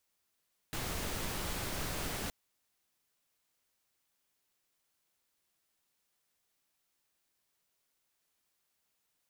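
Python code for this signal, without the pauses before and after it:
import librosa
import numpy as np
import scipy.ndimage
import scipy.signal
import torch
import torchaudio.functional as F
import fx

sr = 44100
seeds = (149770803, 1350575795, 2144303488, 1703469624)

y = fx.noise_colour(sr, seeds[0], length_s=1.57, colour='pink', level_db=-37.5)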